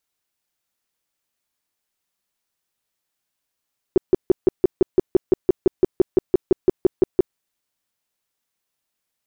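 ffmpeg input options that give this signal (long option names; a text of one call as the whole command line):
ffmpeg -f lavfi -i "aevalsrc='0.376*sin(2*PI*370*mod(t,0.17))*lt(mod(t,0.17),6/370)':duration=3.4:sample_rate=44100" out.wav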